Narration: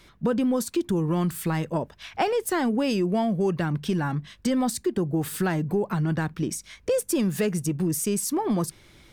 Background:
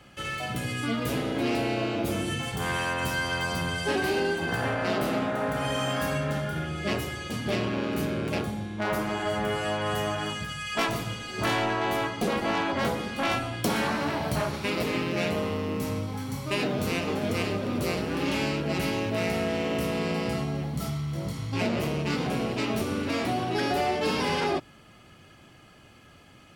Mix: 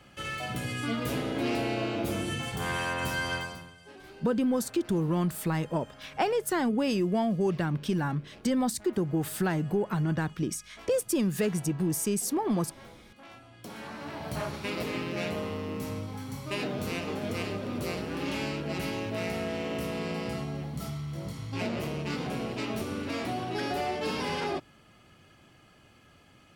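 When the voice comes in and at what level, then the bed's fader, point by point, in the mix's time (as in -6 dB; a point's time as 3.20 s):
4.00 s, -3.0 dB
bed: 3.35 s -2.5 dB
3.76 s -23.5 dB
13.31 s -23.5 dB
14.45 s -5 dB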